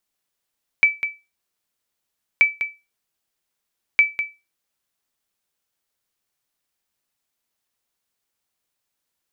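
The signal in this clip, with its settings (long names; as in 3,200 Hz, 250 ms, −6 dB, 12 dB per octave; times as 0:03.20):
ping with an echo 2,310 Hz, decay 0.25 s, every 1.58 s, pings 3, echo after 0.20 s, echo −10 dB −6 dBFS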